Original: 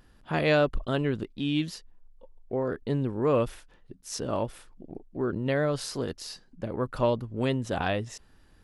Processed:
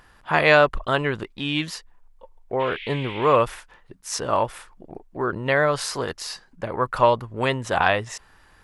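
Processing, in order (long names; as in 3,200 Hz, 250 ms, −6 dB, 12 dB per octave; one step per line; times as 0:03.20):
low-shelf EQ 150 Hz −4.5 dB
0:02.59–0:03.35: noise in a band 2,000–3,500 Hz −47 dBFS
octave-band graphic EQ 250/1,000/2,000/8,000 Hz −6/+8/+6/+3 dB
level +5 dB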